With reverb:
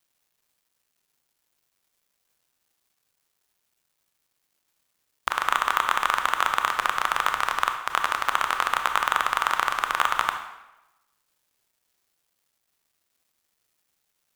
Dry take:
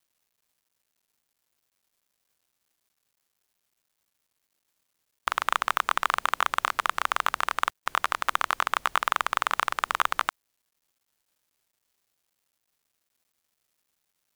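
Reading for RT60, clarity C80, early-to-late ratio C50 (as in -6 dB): 1.0 s, 9.5 dB, 7.0 dB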